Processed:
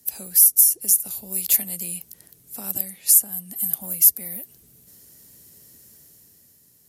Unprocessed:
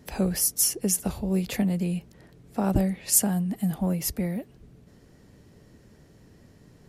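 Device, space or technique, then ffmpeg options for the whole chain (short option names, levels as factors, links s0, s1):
FM broadcast chain: -filter_complex "[0:a]highpass=55,dynaudnorm=f=150:g=11:m=2.37,acrossover=split=100|490|1500[s0][s1][s2][s3];[s0]acompressor=threshold=0.00398:ratio=4[s4];[s1]acompressor=threshold=0.0447:ratio=4[s5];[s2]acompressor=threshold=0.0251:ratio=4[s6];[s3]acompressor=threshold=0.0708:ratio=4[s7];[s4][s5][s6][s7]amix=inputs=4:normalize=0,aemphasis=mode=production:type=75fm,alimiter=limit=0.596:level=0:latency=1:release=427,asoftclip=type=hard:threshold=0.447,lowpass=f=15000:w=0.5412,lowpass=f=15000:w=1.3066,aemphasis=mode=production:type=75fm,volume=0.237"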